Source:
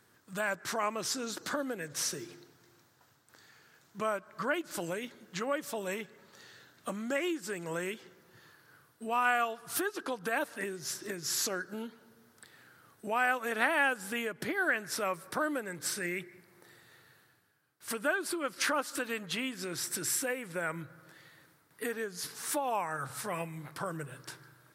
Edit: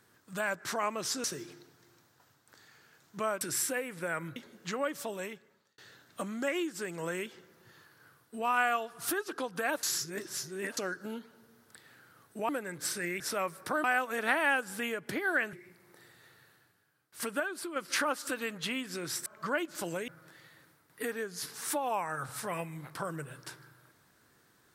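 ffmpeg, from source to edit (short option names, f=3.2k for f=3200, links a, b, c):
-filter_complex "[0:a]asplit=15[a][b][c][d][e][f][g][h][i][j][k][l][m][n][o];[a]atrim=end=1.242[p];[b]atrim=start=2.048:end=4.222[q];[c]atrim=start=19.938:end=20.892[r];[d]atrim=start=5.038:end=6.46,asetpts=PTS-STARTPTS,afade=t=out:st=0.642:d=0.78[s];[e]atrim=start=6.46:end=10.512,asetpts=PTS-STARTPTS,afade=t=in:d=0.004:c=hsin[t];[f]atrim=start=10.508:end=11.452,asetpts=PTS-STARTPTS,areverse[u];[g]atrim=start=11.448:end=13.172[v];[h]atrim=start=15.498:end=16.212[w];[i]atrim=start=14.858:end=15.502[x];[j]atrim=start=13.168:end=14.862[y];[k]atrim=start=16.208:end=18.082[z];[l]atrim=start=18.078:end=18.442,asetpts=PTS-STARTPTS,volume=-4.5dB[aa];[m]atrim=start=18.438:end=19.942[ab];[n]atrim=start=4.218:end=5.042[ac];[o]atrim=start=20.888[ad];[p][q]acrossfade=d=0.004:c1=hsin:c2=hsin[ae];[ae][r]acrossfade=d=0.004:c1=hsin:c2=hsin[af];[s][t]concat=n=2:v=0:a=1[ag];[af][ag]acrossfade=d=0.004:c1=hsin:c2=hsin[ah];[ah][u]acrossfade=d=0.004:c1=hsin:c2=hsin[ai];[ai][v]acrossfade=d=0.004:c1=hsin:c2=hsin[aj];[aj][w]acrossfade=d=0.004:c1=hsin:c2=hsin[ak];[ak][x]acrossfade=d=0.004:c1=hsin:c2=hsin[al];[al][y]acrossfade=d=0.004:c1=hsin:c2=hsin[am];[am][z]acrossfade=d=0.004:c1=hsin:c2=hsin[an];[an][aa]acrossfade=d=0.004:c1=hsin:c2=hsin[ao];[ao][ab]acrossfade=d=0.004:c1=hsin:c2=hsin[ap];[ap][ac]acrossfade=d=0.004:c1=hsin:c2=hsin[aq];[aq][ad]acrossfade=d=0.004:c1=hsin:c2=hsin"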